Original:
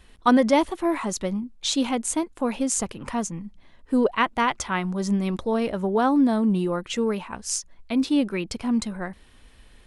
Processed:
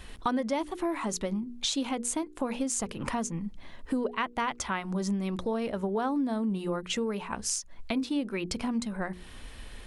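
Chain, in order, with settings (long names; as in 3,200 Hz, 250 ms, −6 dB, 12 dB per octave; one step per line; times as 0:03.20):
de-essing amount 35%
mains-hum notches 60/120/180/240/300/360/420/480 Hz
downward compressor 4 to 1, threshold −38 dBFS, peak gain reduction 19.5 dB
level +7.5 dB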